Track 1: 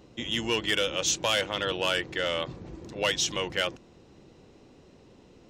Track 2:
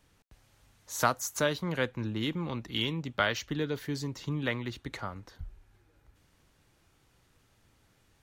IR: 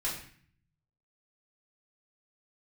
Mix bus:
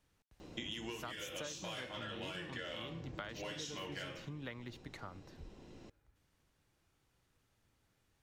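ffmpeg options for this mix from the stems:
-filter_complex "[0:a]acompressor=threshold=-28dB:ratio=6,adelay=400,volume=-0.5dB,asplit=2[a][b];[b]volume=-9.5dB[c];[1:a]volume=-10dB,asplit=2[d][e];[e]apad=whole_len=260065[f];[a][f]sidechaincompress=threshold=-52dB:ratio=8:attack=16:release=1010[g];[2:a]atrim=start_sample=2205[h];[c][h]afir=irnorm=-1:irlink=0[i];[g][d][i]amix=inputs=3:normalize=0,acompressor=threshold=-41dB:ratio=6"

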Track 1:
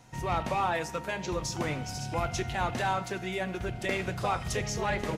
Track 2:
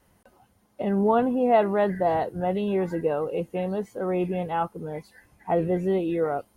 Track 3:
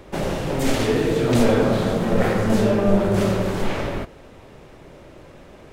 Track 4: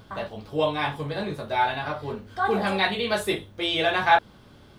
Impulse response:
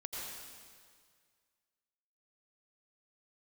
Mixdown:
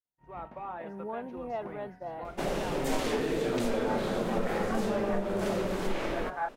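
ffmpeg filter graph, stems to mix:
-filter_complex "[0:a]lowpass=1.4k,adelay=50,volume=-9.5dB[a];[1:a]volume=-16dB[b];[2:a]acompressor=threshold=-19dB:ratio=6,adelay=2250,volume=-5.5dB[c];[3:a]lowpass=f=1.6k:w=0.5412,lowpass=f=1.6k:w=1.3066,adelay=2300,volume=-14.5dB[d];[a][b][c][d]amix=inputs=4:normalize=0,agate=range=-33dB:threshold=-38dB:ratio=3:detection=peak,equalizer=f=93:w=1.3:g=-14.5"

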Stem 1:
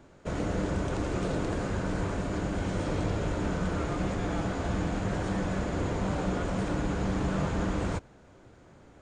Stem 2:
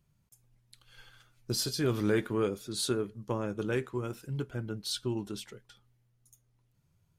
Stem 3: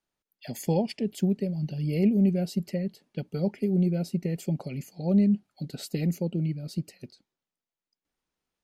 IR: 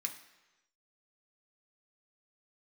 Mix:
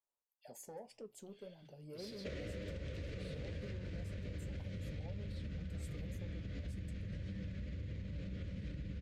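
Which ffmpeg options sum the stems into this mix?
-filter_complex "[0:a]highpass=f=48:w=0.5412,highpass=f=48:w=1.3066,asubboost=boost=11:cutoff=140,acompressor=threshold=-26dB:ratio=6,adelay=2000,volume=2.5dB,asplit=2[a][b];[b]volume=-19.5dB[c];[1:a]aeval=exprs='0.0596*(abs(mod(val(0)/0.0596+3,4)-2)-1)':c=same,alimiter=level_in=7.5dB:limit=-24dB:level=0:latency=1:release=174,volume=-7.5dB,adelay=450,volume=-14dB,asplit=2[d][e];[e]volume=-8dB[f];[2:a]equalizer=f=125:t=o:w=1:g=-7,equalizer=f=250:t=o:w=1:g=-6,equalizer=f=500:t=o:w=1:g=9,equalizer=f=1k:t=o:w=1:g=12,equalizer=f=2k:t=o:w=1:g=-6,equalizer=f=4k:t=o:w=1:g=-6,equalizer=f=8k:t=o:w=1:g=10,alimiter=limit=-20.5dB:level=0:latency=1:release=192,asoftclip=type=tanh:threshold=-21.5dB,volume=-15dB,asplit=2[g][h];[h]volume=-18dB[i];[a][d]amix=inputs=2:normalize=0,firequalizer=gain_entry='entry(350,0);entry(540,9);entry(850,-23);entry(1900,8);entry(4500,8);entry(8700,-11)':delay=0.05:min_phase=1,alimiter=level_in=2dB:limit=-24dB:level=0:latency=1:release=165,volume=-2dB,volume=0dB[j];[3:a]atrim=start_sample=2205[k];[c][f][i]amix=inputs=3:normalize=0[l];[l][k]afir=irnorm=-1:irlink=0[m];[g][j][m]amix=inputs=3:normalize=0,flanger=delay=9.3:depth=4.7:regen=-63:speed=1.9:shape=sinusoidal,acompressor=threshold=-41dB:ratio=4"

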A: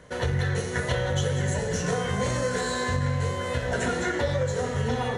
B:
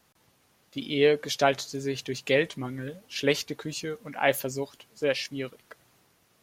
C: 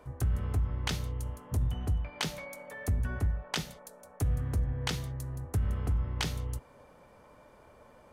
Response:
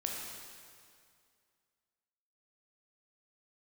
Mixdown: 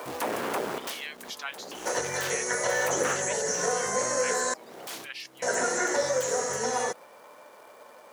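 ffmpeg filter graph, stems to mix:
-filter_complex "[0:a]highshelf=f=4.5k:t=q:w=3:g=10.5,adelay=1750,volume=2.5dB,asplit=3[a][b][c];[a]atrim=end=4.54,asetpts=PTS-STARTPTS,afade=t=out:st=4.536:d=0.004:c=hsin[d];[b]atrim=start=4.54:end=5.42,asetpts=PTS-STARTPTS,volume=0[e];[c]atrim=start=5.42,asetpts=PTS-STARTPTS,afade=t=in:d=0.004:c=hsin[f];[d][e][f]concat=n=3:v=0:a=1[g];[1:a]highpass=f=1.1k:w=0.5412,highpass=f=1.1k:w=1.3066,volume=-7dB,asplit=2[h][i];[2:a]aeval=exprs='0.1*sin(PI/2*7.08*val(0)/0.1)':c=same,acrusher=bits=3:mode=log:mix=0:aa=0.000001,volume=-1.5dB,afade=t=out:st=3.19:d=0.67:silence=0.281838[j];[i]apad=whole_len=358248[k];[j][k]sidechaincompress=threshold=-49dB:ratio=8:attack=12:release=348[l];[g][h][l]amix=inputs=3:normalize=0,highpass=450,acrossover=split=2700[m][n];[n]acompressor=threshold=-31dB:ratio=4:attack=1:release=60[o];[m][o]amix=inputs=2:normalize=0"

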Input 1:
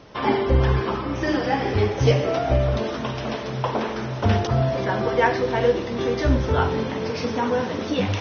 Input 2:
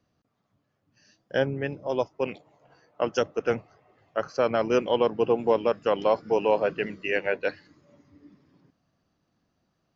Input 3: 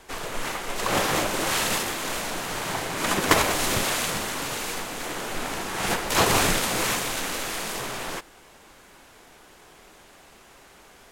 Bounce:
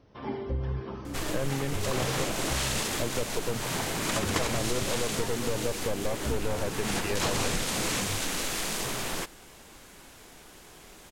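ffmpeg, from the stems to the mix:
-filter_complex "[0:a]volume=-18.5dB[a];[1:a]aeval=exprs='(tanh(22.4*val(0)+0.75)-tanh(0.75))/22.4':c=same,volume=1.5dB[b];[2:a]acrossover=split=9600[c][d];[d]acompressor=threshold=-42dB:ratio=4:attack=1:release=60[e];[c][e]amix=inputs=2:normalize=0,highshelf=f=2.3k:g=9.5,acontrast=20,adelay=1050,volume=-10.5dB[f];[a][b][f]amix=inputs=3:normalize=0,lowshelf=f=440:g=10,acompressor=threshold=-27dB:ratio=3"

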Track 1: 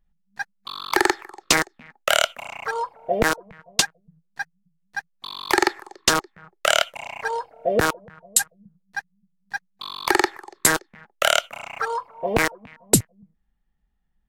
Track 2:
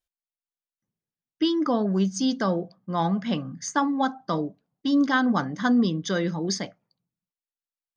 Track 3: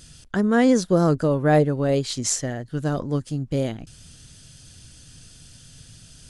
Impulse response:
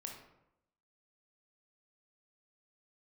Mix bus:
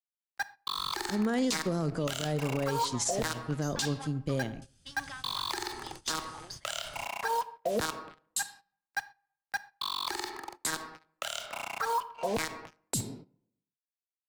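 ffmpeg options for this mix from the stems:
-filter_complex "[0:a]equalizer=f=250:t=o:w=1:g=7,equalizer=f=1k:t=o:w=1:g=8,equalizer=f=4k:t=o:w=1:g=8,equalizer=f=8k:t=o:w=1:g=5,acrusher=bits=4:mix=0:aa=0.5,volume=-10.5dB,asplit=2[a][b];[b]volume=-6dB[c];[1:a]aeval=exprs='if(lt(val(0),0),0.447*val(0),val(0))':c=same,highpass=1.1k,acompressor=threshold=-42dB:ratio=8,volume=-3dB,asplit=2[d][e];[e]volume=-4.5dB[f];[2:a]adelay=750,volume=-7dB,asplit=2[g][h];[h]volume=-7.5dB[i];[3:a]atrim=start_sample=2205[j];[c][f][i]amix=inputs=3:normalize=0[k];[k][j]afir=irnorm=-1:irlink=0[l];[a][d][g][l]amix=inputs=4:normalize=0,agate=range=-15dB:threshold=-44dB:ratio=16:detection=peak,acrossover=split=130|3000[m][n][o];[n]acompressor=threshold=-25dB:ratio=6[p];[m][p][o]amix=inputs=3:normalize=0,alimiter=limit=-20.5dB:level=0:latency=1:release=42"

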